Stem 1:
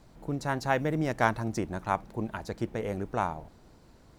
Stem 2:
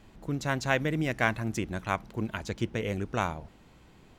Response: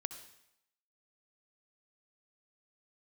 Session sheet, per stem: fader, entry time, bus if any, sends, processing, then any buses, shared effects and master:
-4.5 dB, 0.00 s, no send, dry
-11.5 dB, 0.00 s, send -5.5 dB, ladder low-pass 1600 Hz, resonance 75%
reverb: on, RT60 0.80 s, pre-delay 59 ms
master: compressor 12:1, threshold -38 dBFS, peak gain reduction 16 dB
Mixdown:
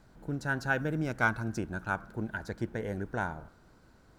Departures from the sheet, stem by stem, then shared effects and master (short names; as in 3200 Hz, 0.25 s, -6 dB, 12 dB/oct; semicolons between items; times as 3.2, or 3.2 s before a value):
stem 2 -11.5 dB -> -4.0 dB; master: missing compressor 12:1, threshold -38 dBFS, peak gain reduction 16 dB